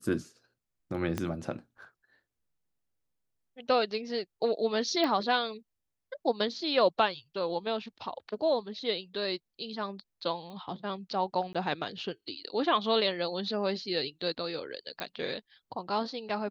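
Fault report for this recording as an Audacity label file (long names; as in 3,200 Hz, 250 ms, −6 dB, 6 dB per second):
1.180000	1.180000	click −17 dBFS
5.040000	5.040000	click −19 dBFS
10.500000	10.500000	click −34 dBFS
11.530000	11.550000	drop-out
15.000000	15.000000	click −20 dBFS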